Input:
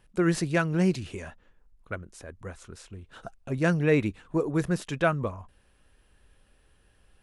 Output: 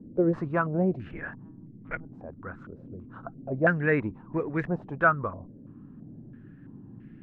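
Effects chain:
0:01.11–0:02.13: one-pitch LPC vocoder at 8 kHz 160 Hz
noise in a band 100–290 Hz −44 dBFS
low-pass on a step sequencer 3 Hz 550–2,000 Hz
level −3.5 dB

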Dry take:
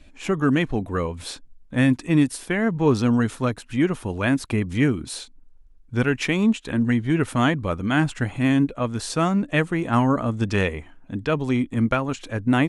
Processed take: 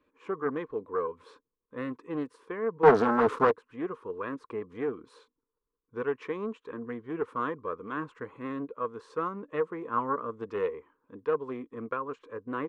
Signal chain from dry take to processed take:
0:02.83–0:03.51: leveller curve on the samples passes 5
pair of resonant band-passes 700 Hz, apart 1.2 octaves
highs frequency-modulated by the lows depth 0.33 ms

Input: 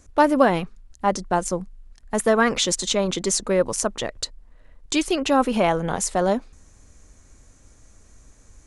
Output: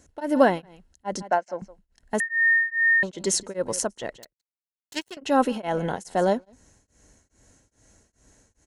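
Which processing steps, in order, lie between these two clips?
0:01.22–0:01.62: loudspeaker in its box 370–5,200 Hz, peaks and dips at 400 Hz −8 dB, 650 Hz +8 dB, 1,500 Hz +4 dB, 2,200 Hz +6 dB, 3,500 Hz −10 dB
0:04.16–0:05.17: power curve on the samples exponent 3
notch comb filter 1,200 Hz
single-tap delay 167 ms −21.5 dB
0:02.20–0:03.03: beep over 1,830 Hz −15 dBFS
tremolo along a rectified sine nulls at 2.4 Hz

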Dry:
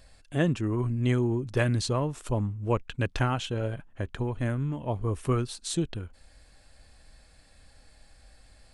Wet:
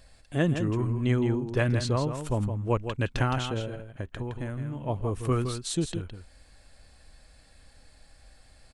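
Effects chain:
0:00.93–0:02.15: high-shelf EQ 7,500 Hz −8.5 dB
0:03.59–0:04.85: downward compressor 4 to 1, threshold −31 dBFS, peak gain reduction 6.5 dB
single-tap delay 165 ms −8 dB

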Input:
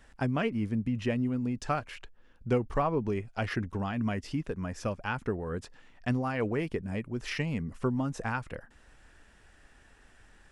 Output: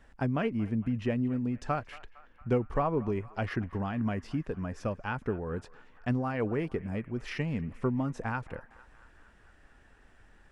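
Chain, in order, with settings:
high-shelf EQ 3,000 Hz −9.5 dB
feedback echo with a band-pass in the loop 229 ms, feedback 70%, band-pass 1,500 Hz, level −18 dB

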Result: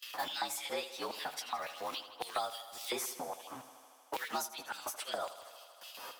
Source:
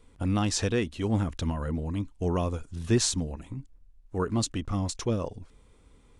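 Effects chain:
partials spread apart or drawn together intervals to 113%
high-pass filter 61 Hz 24 dB per octave
noise gate with hold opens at −55 dBFS
mains-hum notches 50/100/150 Hz
in parallel at −11.5 dB: centre clipping without the shift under −41 dBFS
on the sum: auto-filter high-pass square 3.6 Hz 810–3,000 Hz
on a send: feedback echo with a high-pass in the loop 78 ms, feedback 62%, high-pass 200 Hz, level −14.5 dB
on the sum: multiband upward and downward compressor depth 100%
level −2 dB

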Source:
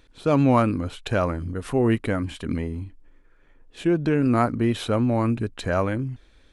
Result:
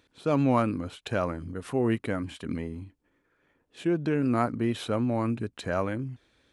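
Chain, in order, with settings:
high-pass filter 100 Hz 12 dB per octave
level −5 dB

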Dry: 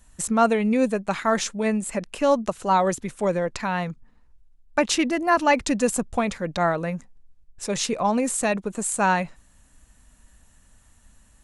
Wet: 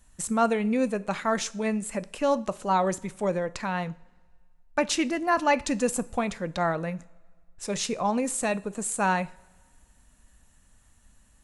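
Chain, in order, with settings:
coupled-rooms reverb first 0.44 s, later 1.8 s, from −18 dB, DRR 15 dB
level −4 dB

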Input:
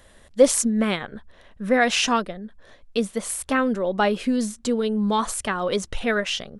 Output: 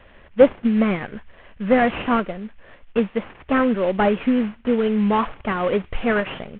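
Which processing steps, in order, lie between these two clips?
variable-slope delta modulation 16 kbit/s
delay with a high-pass on its return 60 ms, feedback 52%, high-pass 2,200 Hz, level −18 dB
level +4 dB

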